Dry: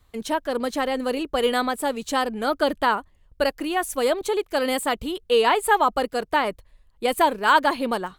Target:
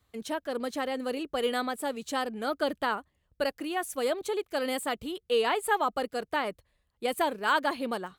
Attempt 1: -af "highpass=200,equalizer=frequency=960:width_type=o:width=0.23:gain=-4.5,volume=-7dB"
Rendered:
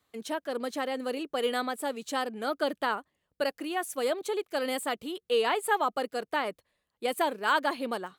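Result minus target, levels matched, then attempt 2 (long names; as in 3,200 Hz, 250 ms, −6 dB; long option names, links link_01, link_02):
125 Hz band −3.5 dB
-af "highpass=72,equalizer=frequency=960:width_type=o:width=0.23:gain=-4.5,volume=-7dB"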